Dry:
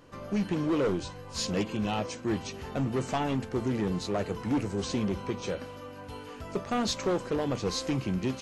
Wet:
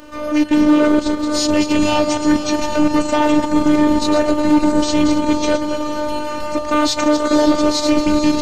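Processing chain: backward echo that repeats 128 ms, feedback 44%, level -7 dB; transient shaper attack -6 dB, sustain -10 dB; robot voice 301 Hz; on a send: echo that smears into a reverb 501 ms, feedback 59%, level -11 dB; on the sum: loudness maximiser +20.5 dB; trim -1 dB

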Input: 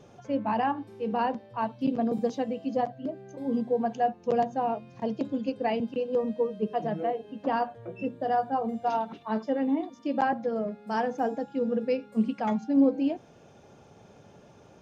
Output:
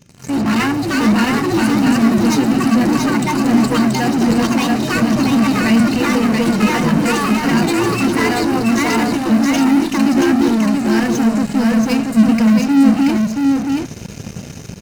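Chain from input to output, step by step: ever faster or slower copies 93 ms, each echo +4 st, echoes 2; FFT filter 220 Hz 0 dB, 640 Hz -25 dB, 2 kHz -5 dB; level rider gain up to 7 dB; treble shelf 4.8 kHz +10.5 dB; in parallel at -11 dB: fuzz box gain 43 dB, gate -50 dBFS; on the sum: band-stop 3.4 kHz, Q 6.3; on a send: delay 680 ms -3.5 dB; on the sum: trim +5.5 dB

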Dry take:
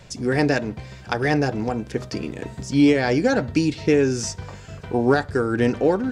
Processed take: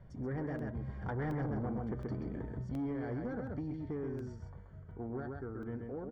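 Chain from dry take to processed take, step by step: Doppler pass-by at 1.48 s, 10 m/s, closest 2.5 m; bass shelf 200 Hz +11.5 dB; delay 131 ms -5.5 dB; compression 2.5:1, threshold -34 dBFS, peak gain reduction 14 dB; saturation -32 dBFS, distortion -11 dB; Savitzky-Golay filter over 41 samples; crackling interface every 0.72 s, samples 64, zero, from 0.59 s

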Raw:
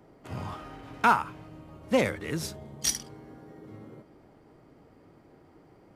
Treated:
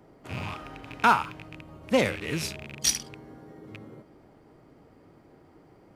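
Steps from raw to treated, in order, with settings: rattle on loud lows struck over -43 dBFS, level -29 dBFS; dynamic bell 3.9 kHz, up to +4 dB, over -43 dBFS, Q 1.1; trim +1 dB

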